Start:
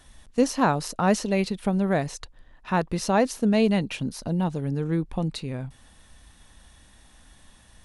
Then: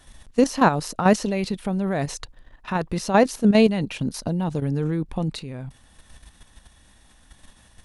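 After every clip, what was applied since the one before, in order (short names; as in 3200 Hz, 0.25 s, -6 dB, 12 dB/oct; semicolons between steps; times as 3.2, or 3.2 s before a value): level quantiser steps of 10 dB; gain +6.5 dB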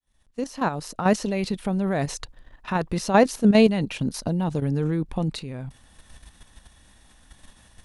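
opening faded in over 1.55 s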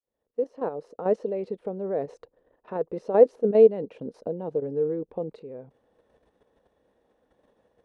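band-pass 470 Hz, Q 5.3; gain +7 dB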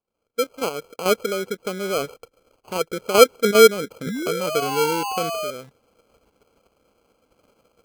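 painted sound fall, 4.06–5.51, 580–1700 Hz -31 dBFS; sample-and-hold 24×; gain +4 dB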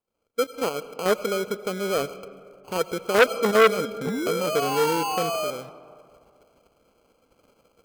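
on a send at -16 dB: reverb RT60 2.4 s, pre-delay 50 ms; on the sum: core saturation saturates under 1700 Hz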